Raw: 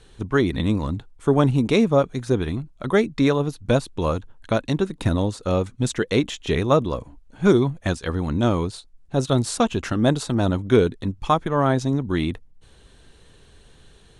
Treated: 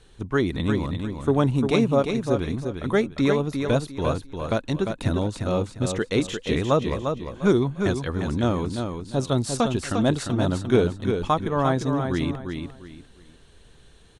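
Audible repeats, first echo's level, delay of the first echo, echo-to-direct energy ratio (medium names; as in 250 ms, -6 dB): 3, -6.0 dB, 350 ms, -5.5 dB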